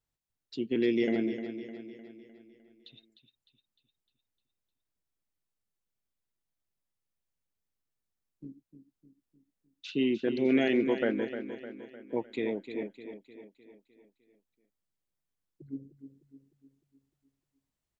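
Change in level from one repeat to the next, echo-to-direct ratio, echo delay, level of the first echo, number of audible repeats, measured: -6.0 dB, -8.5 dB, 0.304 s, -10.0 dB, 5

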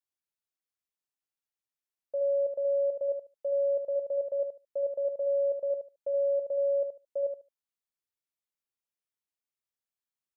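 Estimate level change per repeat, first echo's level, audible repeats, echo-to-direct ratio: -15.5 dB, -6.0 dB, 2, -6.0 dB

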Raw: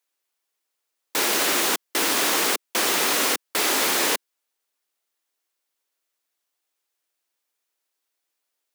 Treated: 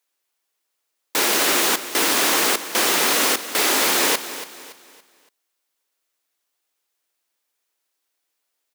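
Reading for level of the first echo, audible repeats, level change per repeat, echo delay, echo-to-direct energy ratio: -13.5 dB, 3, -8.5 dB, 0.283 s, -13.0 dB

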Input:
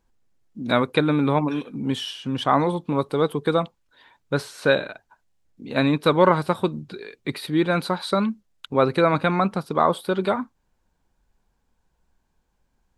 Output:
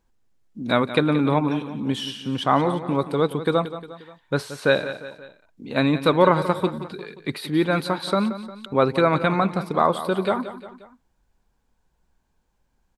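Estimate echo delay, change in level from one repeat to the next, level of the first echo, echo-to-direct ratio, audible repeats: 0.177 s, -6.0 dB, -13.0 dB, -12.0 dB, 3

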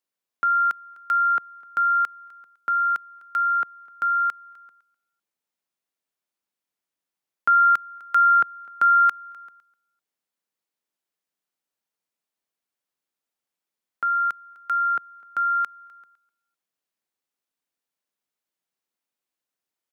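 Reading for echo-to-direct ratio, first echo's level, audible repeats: -23.0 dB, -23.0 dB, 1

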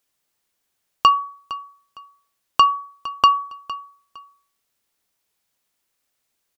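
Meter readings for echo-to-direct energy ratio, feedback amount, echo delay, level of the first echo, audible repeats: -16.0 dB, 25%, 0.459 s, -16.5 dB, 2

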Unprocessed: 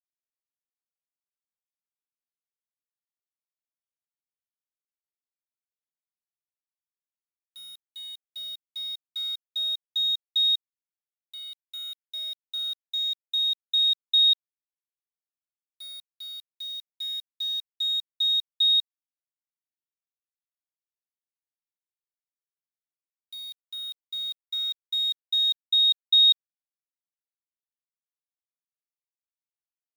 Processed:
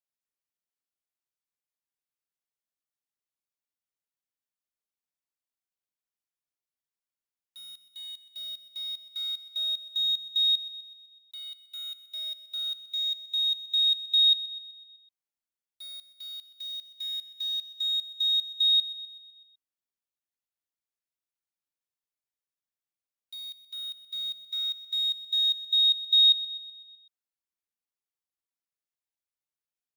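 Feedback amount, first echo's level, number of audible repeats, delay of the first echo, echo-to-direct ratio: 57%, -15.0 dB, 5, 0.126 s, -13.5 dB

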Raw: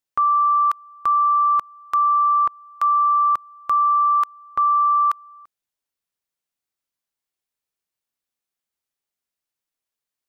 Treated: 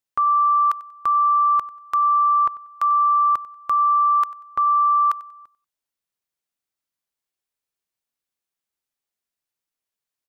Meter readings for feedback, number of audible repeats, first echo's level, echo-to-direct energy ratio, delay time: 27%, 2, -20.0 dB, -19.5 dB, 94 ms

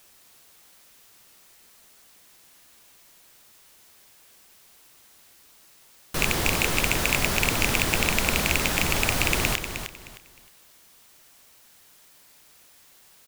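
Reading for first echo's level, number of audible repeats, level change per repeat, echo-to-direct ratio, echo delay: -9.0 dB, 3, -11.5 dB, -8.5 dB, 0.309 s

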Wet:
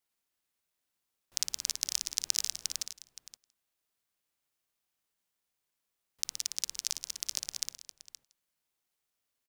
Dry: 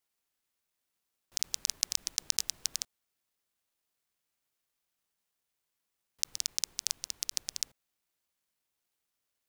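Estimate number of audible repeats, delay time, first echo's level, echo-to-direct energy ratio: 4, 58 ms, -6.0 dB, -5.5 dB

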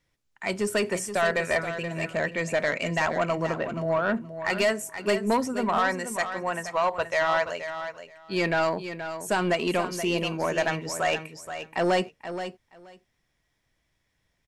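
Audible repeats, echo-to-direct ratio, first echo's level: 2, -10.0 dB, -10.0 dB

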